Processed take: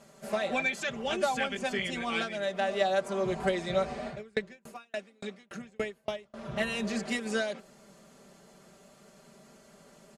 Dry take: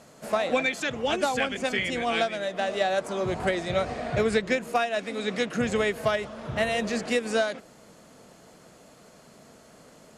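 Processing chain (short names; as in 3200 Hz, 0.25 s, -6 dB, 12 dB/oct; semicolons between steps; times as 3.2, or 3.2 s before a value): comb 5.1 ms, depth 87%; 4.08–6.34 dB-ramp tremolo decaying 3.5 Hz, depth 37 dB; gain -6.5 dB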